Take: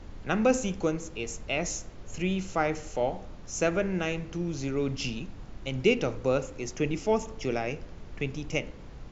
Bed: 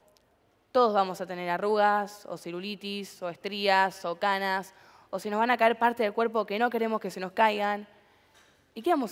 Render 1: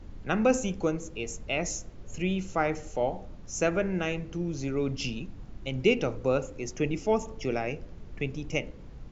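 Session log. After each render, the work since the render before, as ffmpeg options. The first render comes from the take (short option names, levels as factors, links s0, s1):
-af "afftdn=nr=6:nf=-45"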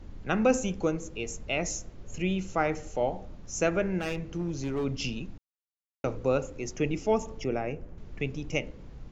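-filter_complex "[0:a]asettb=1/sr,asplit=3[s0][s1][s2];[s0]atrim=end=3.994[s3];[s1]atrim=start=3.99:end=4.85,asetpts=PTS-STARTPTS,afade=t=in:d=0.004:c=qsin,afade=t=out:st=0.856:d=0.004:c=qsin,asoftclip=type=hard:threshold=0.0501[s4];[s2]atrim=start=4.846[s5];[s3][s4]acrossfade=d=0.004:c1=hsin:c2=qsin[s6];[s6][s5]acrossfade=d=0.004:c1=qsin:c2=hsin,asettb=1/sr,asplit=3[s7][s8][s9];[s7]atrim=end=7.444[s10];[s8]atrim=start=7.44:end=7.98,asetpts=PTS-STARTPTS,afade=t=in:d=0.004:c=qsin,afade=t=out:st=0.536:d=0.004:c=qsin,equalizer=f=4500:t=o:w=1.7:g=-12[s11];[s9]atrim=start=7.976[s12];[s10][s11]acrossfade=d=0.004:c1=hsin:c2=qsin[s13];[s13][s12]acrossfade=d=0.004:c1=qsin:c2=hsin,asplit=3[s14][s15][s16];[s14]atrim=end=5.38,asetpts=PTS-STARTPTS,afade=t=out:st=5.376:d=0.004:c=hsin[s17];[s15]atrim=start=5.38:end=6.04,asetpts=PTS-STARTPTS,volume=0[s18];[s16]atrim=start=6.04,asetpts=PTS-STARTPTS,afade=t=in:d=0.004:c=hsin[s19];[s17][s18][s19]concat=n=3:v=0:a=1"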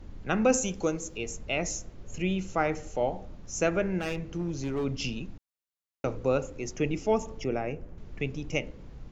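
-filter_complex "[0:a]asettb=1/sr,asplit=3[s0][s1][s2];[s0]atrim=end=0.524[s3];[s1]atrim=start=0.52:end=1.18,asetpts=PTS-STARTPTS,afade=t=in:d=0.004:c=qsin,afade=t=out:st=0.656:d=0.004:c=qsin,bass=f=250:g=-3,treble=f=4000:g=8[s4];[s2]atrim=start=1.176[s5];[s3][s4]acrossfade=d=0.004:c1=hsin:c2=qsin[s6];[s6][s5]acrossfade=d=0.004:c1=qsin:c2=hsin"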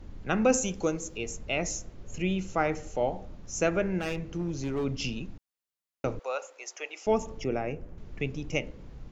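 -filter_complex "[0:a]asettb=1/sr,asplit=3[s0][s1][s2];[s0]atrim=end=6.194[s3];[s1]atrim=start=6.19:end=7.07,asetpts=PTS-STARTPTS,afade=t=in:d=0.004:c=qsin,afade=t=out:st=0.876:d=0.004:c=qsin,highpass=f=630:w=0.5412,highpass=f=630:w=1.3066[s4];[s2]atrim=start=7.066[s5];[s3][s4]acrossfade=d=0.004:c1=hsin:c2=qsin[s6];[s6][s5]acrossfade=d=0.004:c1=qsin:c2=hsin"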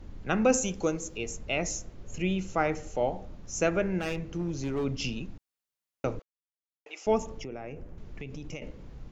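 -filter_complex "[0:a]asettb=1/sr,asplit=3[s0][s1][s2];[s0]atrim=end=7.384[s3];[s1]atrim=start=7.38:end=8.62,asetpts=PTS-STARTPTS,afade=t=in:d=0.004:c=qsin,afade=t=out:st=1.236:d=0.004:c=qsin,acompressor=threshold=0.0178:ratio=6:attack=3.2:release=140:knee=1:detection=peak[s4];[s2]atrim=start=8.616[s5];[s3][s4]acrossfade=d=0.004:c1=hsin:c2=qsin[s6];[s6][s5]acrossfade=d=0.004:c1=qsin:c2=hsin,asplit=3[s7][s8][s9];[s7]atrim=end=6.22,asetpts=PTS-STARTPTS,afade=t=out:st=6.216:d=0.004:c=hsin[s10];[s8]atrim=start=6.22:end=6.86,asetpts=PTS-STARTPTS,volume=0[s11];[s9]atrim=start=6.86,asetpts=PTS-STARTPTS,afade=t=in:d=0.004:c=hsin[s12];[s10][s11][s12]concat=n=3:v=0:a=1"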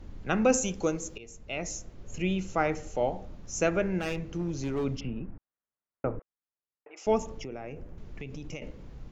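-filter_complex "[0:a]asplit=3[s0][s1][s2];[s0]afade=t=out:st=4.99:d=0.02[s3];[s1]lowpass=f=1800:w=0.5412,lowpass=f=1800:w=1.3066,afade=t=in:st=4.99:d=0.02,afade=t=out:st=6.96:d=0.02[s4];[s2]afade=t=in:st=6.96:d=0.02[s5];[s3][s4][s5]amix=inputs=3:normalize=0,asplit=2[s6][s7];[s6]atrim=end=1.18,asetpts=PTS-STARTPTS,afade=t=out:st=1.176:d=0.004:c=hsin:silence=0.16788[s8];[s7]atrim=start=1.18,asetpts=PTS-STARTPTS,afade=t=in:d=1.23:c=qsin:silence=0.16788[s9];[s8][s9]concat=n=2:v=0:a=1"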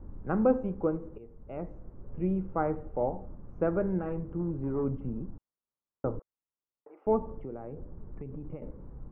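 -af "lowpass=f=1200:w=0.5412,lowpass=f=1200:w=1.3066,equalizer=f=680:w=4.6:g=-5"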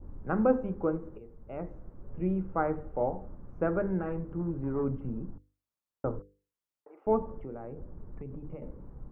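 -af "adynamicequalizer=threshold=0.00251:dfrequency=1600:dqfactor=1.6:tfrequency=1600:tqfactor=1.6:attack=5:release=100:ratio=0.375:range=2:mode=boostabove:tftype=bell,bandreject=f=50:t=h:w=6,bandreject=f=100:t=h:w=6,bandreject=f=150:t=h:w=6,bandreject=f=200:t=h:w=6,bandreject=f=250:t=h:w=6,bandreject=f=300:t=h:w=6,bandreject=f=350:t=h:w=6,bandreject=f=400:t=h:w=6,bandreject=f=450:t=h:w=6,bandreject=f=500:t=h:w=6"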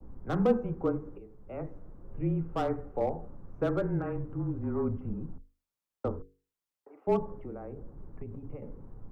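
-filter_complex "[0:a]acrossover=split=250|720[s0][s1][s2];[s2]asoftclip=type=hard:threshold=0.0211[s3];[s0][s1][s3]amix=inputs=3:normalize=0,afreqshift=-25"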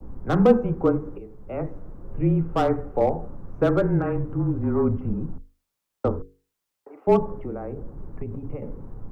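-af "volume=2.82"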